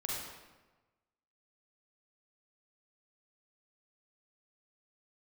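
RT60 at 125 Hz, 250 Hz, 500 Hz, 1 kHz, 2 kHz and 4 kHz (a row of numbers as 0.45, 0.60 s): 1.4, 1.2, 1.2, 1.2, 1.0, 0.85 s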